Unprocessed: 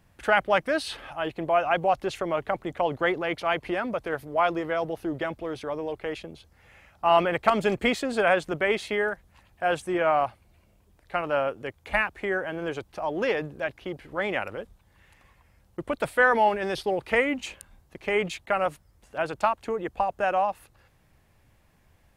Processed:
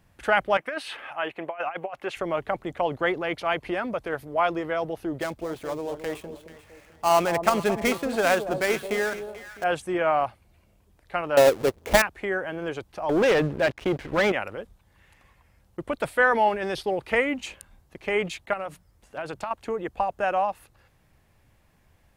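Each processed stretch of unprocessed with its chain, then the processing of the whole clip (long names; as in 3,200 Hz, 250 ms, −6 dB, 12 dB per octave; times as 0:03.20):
0:00.57–0:02.17: high-pass filter 740 Hz 6 dB per octave + high shelf with overshoot 3,300 Hz −8.5 dB, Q 1.5 + compressor whose output falls as the input rises −29 dBFS, ratio −0.5
0:05.20–0:09.64: gap after every zero crossing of 0.092 ms + delay that swaps between a low-pass and a high-pass 219 ms, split 920 Hz, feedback 55%, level −8.5 dB
0:11.37–0:12.02: each half-wave held at its own peak + parametric band 460 Hz +9.5 dB 1.3 octaves
0:13.09–0:14.32: low-pass filter 3,200 Hz 6 dB per octave + leveller curve on the samples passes 3
0:18.53–0:19.51: mains-hum notches 60/120/180 Hz + downward compressor 10 to 1, threshold −27 dBFS
whole clip: no processing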